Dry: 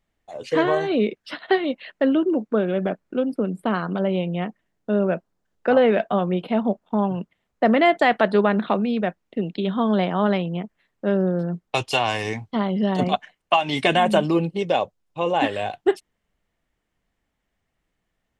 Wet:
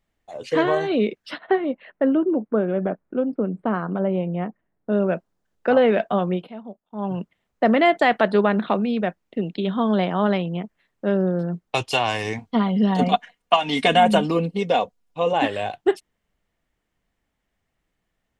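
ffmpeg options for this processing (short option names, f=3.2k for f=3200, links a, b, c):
-filter_complex "[0:a]asettb=1/sr,asplit=3[a][b][c];[a]atrim=end=1.384[d];[b]atrim=start=1.38:end=4.92,asetpts=PTS-STARTPTS,afade=t=in:d=0.004:c=qsin,afade=t=out:st=3.536:d=0.004:c=qsin,lowpass=1.6k[e];[c]atrim=start=4.916[f];[d][e]acrossfade=d=0.004:c1=hsin:c2=qsin[g];[g][f]acrossfade=d=0.004:c1=qsin:c2=hsin,asettb=1/sr,asplit=3[h][i][j];[h]atrim=end=12.384[k];[i]atrim=start=12.38:end=15.33,asetpts=PTS-STARTPTS,afade=t=in:d=0.004:c=qsin,afade=t=out:st=2.946:d=0.004:c=qsin,aecho=1:1:4.2:0.65,atrim=end_sample=130095[l];[j]atrim=start=15.326[m];[k][l]acrossfade=d=0.004:c1=hsin:c2=qsin[n];[n][m]acrossfade=d=0.004:c1=qsin:c2=hsin,asplit=3[o][p][q];[o]atrim=end=6.52,asetpts=PTS-STARTPTS,afade=t=out:st=6.32:d=0.2:silence=0.16788[r];[p]atrim=start=6.52:end=6.94,asetpts=PTS-STARTPTS,volume=-15.5dB[s];[q]atrim=start=6.94,asetpts=PTS-STARTPTS,afade=t=in:d=0.2:silence=0.16788[t];[r][s][t]concat=n=3:v=0:a=1"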